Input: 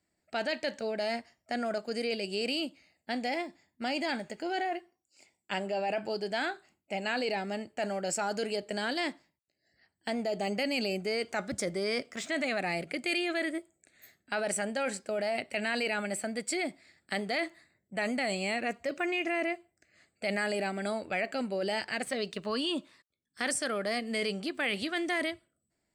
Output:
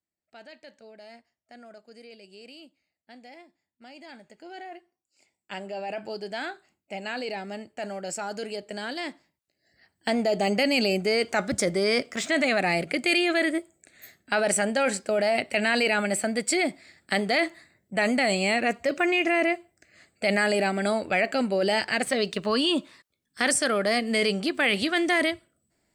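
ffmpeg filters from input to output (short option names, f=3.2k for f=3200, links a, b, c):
-af "volume=8dB,afade=t=in:st=3.94:d=0.77:silence=0.446684,afade=t=in:st=4.71:d=1.36:silence=0.446684,afade=t=in:st=9.07:d=1.03:silence=0.354813"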